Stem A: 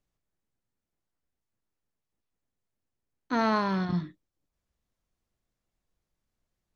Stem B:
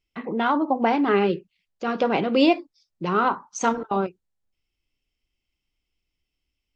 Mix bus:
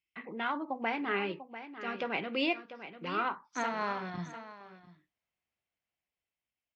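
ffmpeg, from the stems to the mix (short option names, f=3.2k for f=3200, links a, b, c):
-filter_complex "[0:a]dynaudnorm=f=290:g=11:m=8.5dB,equalizer=f=720:t=o:w=0.99:g=8,adelay=250,volume=-19.5dB,asplit=2[a][b];[b]volume=-18.5dB[c];[1:a]volume=-15.5dB,afade=t=out:st=3.44:d=0.41:silence=0.446684,asplit=3[d][e][f];[e]volume=-12dB[g];[f]apad=whole_len=309062[h];[a][h]sidechaincompress=threshold=-47dB:ratio=4:attack=39:release=219[i];[c][g]amix=inputs=2:normalize=0,aecho=0:1:694:1[j];[i][d][j]amix=inputs=3:normalize=0,highpass=71,equalizer=f=2.2k:w=1:g=12.5"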